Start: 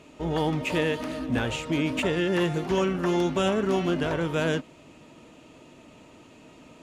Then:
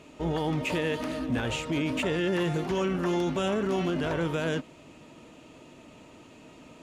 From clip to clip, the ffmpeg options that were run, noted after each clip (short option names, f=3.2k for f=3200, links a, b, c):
-af "alimiter=limit=-20.5dB:level=0:latency=1:release=15"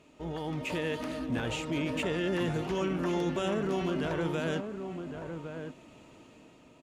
-filter_complex "[0:a]dynaudnorm=f=110:g=11:m=5dB,asplit=2[a][b];[b]adelay=1108,volume=-7dB,highshelf=f=4k:g=-24.9[c];[a][c]amix=inputs=2:normalize=0,volume=-8.5dB"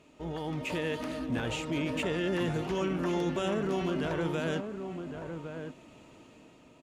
-af anull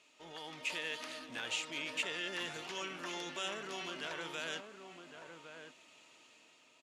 -af "bandpass=f=4.8k:t=q:w=0.62:csg=0,volume=2.5dB"